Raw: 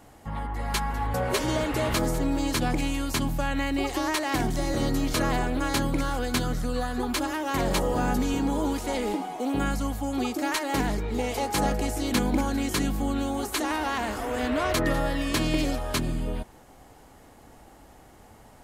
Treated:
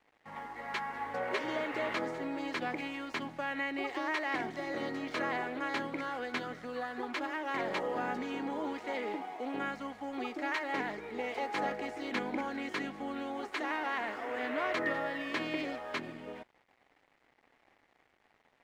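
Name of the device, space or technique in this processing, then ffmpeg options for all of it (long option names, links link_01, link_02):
pocket radio on a weak battery: -af "highpass=320,lowpass=3000,aeval=exprs='sgn(val(0))*max(abs(val(0))-0.00211,0)':channel_layout=same,equalizer=frequency=2000:width_type=o:width=0.51:gain=7,volume=-6.5dB"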